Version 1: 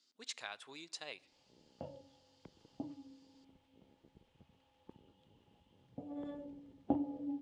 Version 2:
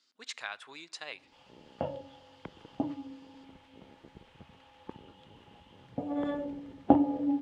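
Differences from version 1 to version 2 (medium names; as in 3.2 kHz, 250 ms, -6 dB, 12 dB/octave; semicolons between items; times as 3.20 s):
background +10.5 dB; master: add peaking EQ 1.5 kHz +8.5 dB 2.1 oct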